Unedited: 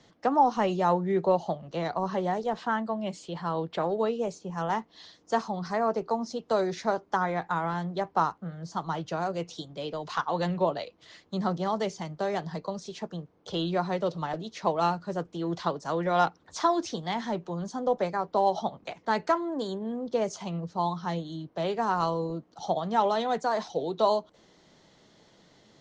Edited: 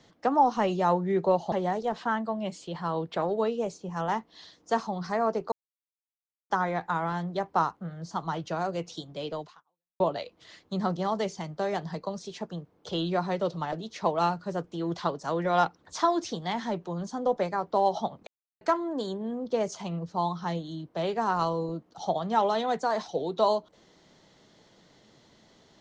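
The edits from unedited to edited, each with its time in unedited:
0:01.52–0:02.13: remove
0:06.13–0:07.11: silence
0:10.02–0:10.61: fade out exponential
0:18.88–0:19.22: silence

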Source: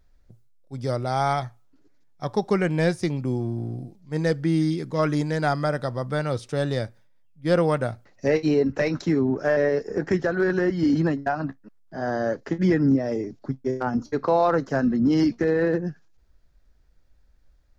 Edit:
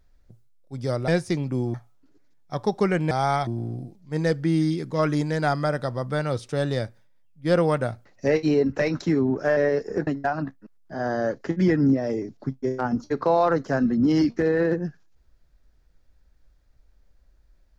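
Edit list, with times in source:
0:01.08–0:01.44: swap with 0:02.81–0:03.47
0:10.07–0:11.09: remove

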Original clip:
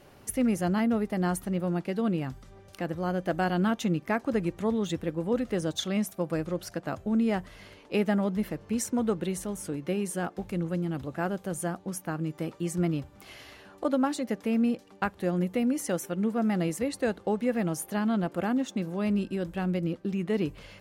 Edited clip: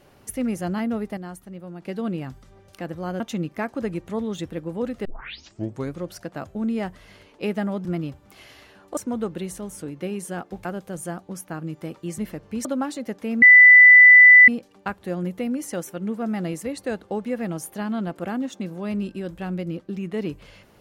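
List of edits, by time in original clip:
0:01.17–0:01.82: clip gain −9 dB
0:03.20–0:03.71: remove
0:05.56: tape start 0.94 s
0:08.36–0:08.83: swap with 0:12.75–0:13.87
0:10.51–0:11.22: remove
0:14.64: insert tone 1,990 Hz −6 dBFS 1.06 s

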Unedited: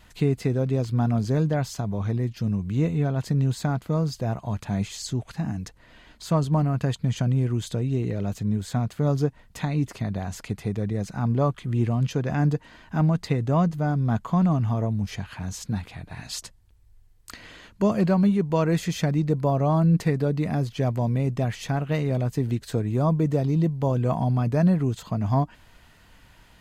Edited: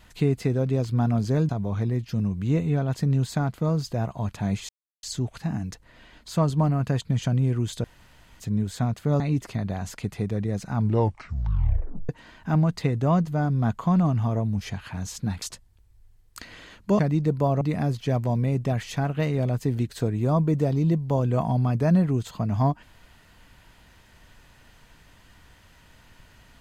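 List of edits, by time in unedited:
0:01.49–0:01.77: remove
0:04.97: splice in silence 0.34 s
0:07.78–0:08.34: fill with room tone
0:09.14–0:09.66: remove
0:11.20: tape stop 1.35 s
0:15.88–0:16.34: remove
0:17.91–0:19.02: remove
0:19.64–0:20.33: remove

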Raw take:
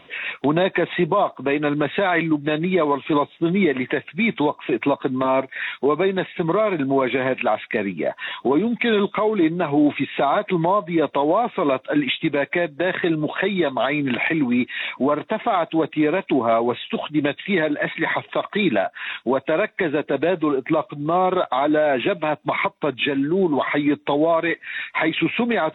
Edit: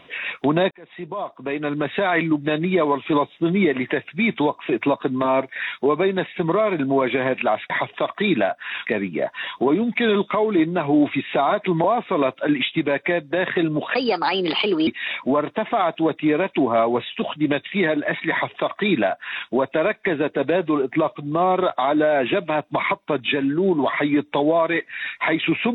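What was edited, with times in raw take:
0:00.71–0:02.17: fade in
0:10.68–0:11.31: remove
0:13.42–0:14.61: play speed 129%
0:18.05–0:19.21: duplicate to 0:07.70

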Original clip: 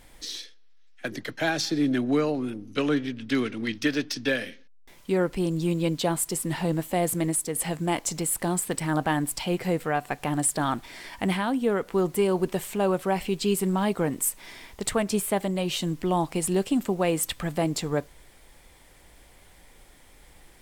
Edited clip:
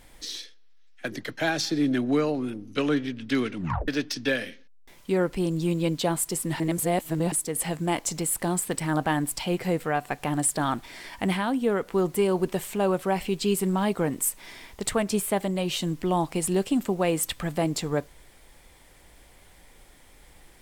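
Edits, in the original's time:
0:03.56: tape stop 0.32 s
0:06.60–0:07.32: reverse

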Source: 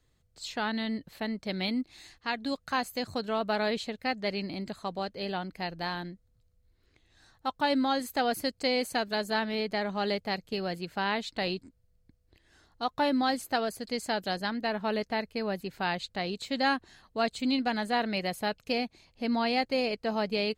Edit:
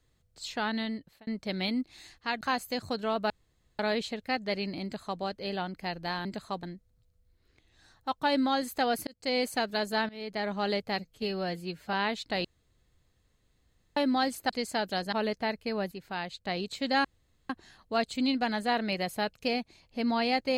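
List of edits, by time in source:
0:00.81–0:01.27: fade out
0:02.41–0:02.66: remove
0:03.55: splice in room tone 0.49 s
0:04.59–0:04.97: duplicate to 0:06.01
0:08.45–0:08.75: fade in
0:09.47–0:09.87: fade in, from −19.5 dB
0:10.37–0:11.00: time-stretch 1.5×
0:11.51–0:13.03: fill with room tone
0:13.56–0:13.84: remove
0:14.47–0:14.82: remove
0:15.61–0:16.15: clip gain −5 dB
0:16.74: splice in room tone 0.45 s

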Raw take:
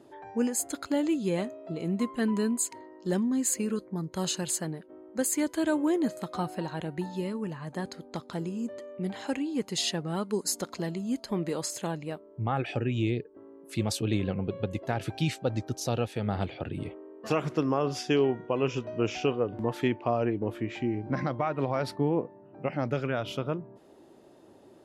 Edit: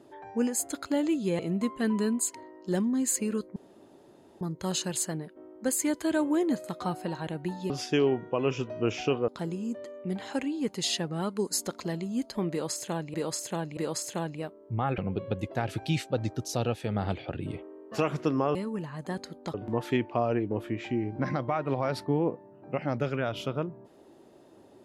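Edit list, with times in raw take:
0:01.39–0:01.77: remove
0:03.94: splice in room tone 0.85 s
0:07.23–0:08.22: swap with 0:17.87–0:19.45
0:11.45–0:12.08: repeat, 3 plays
0:12.66–0:14.30: remove

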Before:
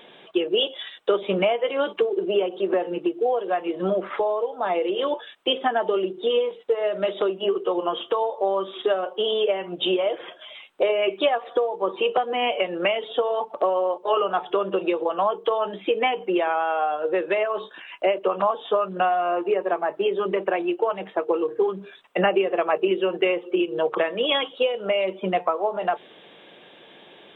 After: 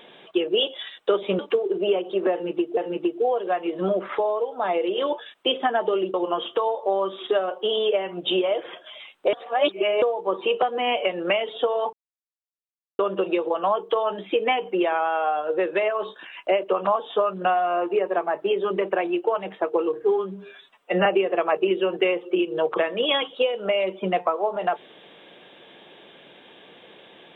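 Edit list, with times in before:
0:01.39–0:01.86: remove
0:02.78–0:03.24: repeat, 2 plays
0:06.15–0:07.69: remove
0:10.88–0:11.57: reverse
0:13.48–0:14.54: silence
0:21.57–0:22.26: time-stretch 1.5×

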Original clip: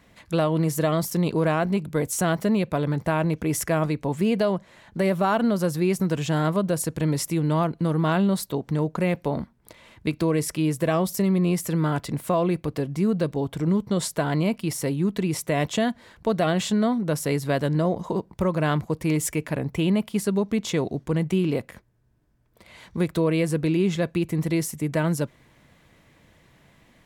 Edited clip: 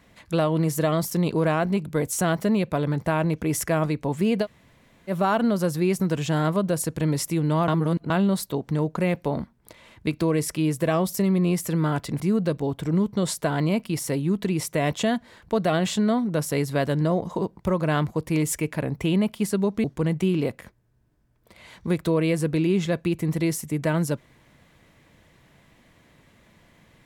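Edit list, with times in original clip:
0:04.44–0:05.10: fill with room tone, crossfade 0.06 s
0:07.68–0:08.10: reverse
0:12.20–0:12.94: remove
0:20.58–0:20.94: remove

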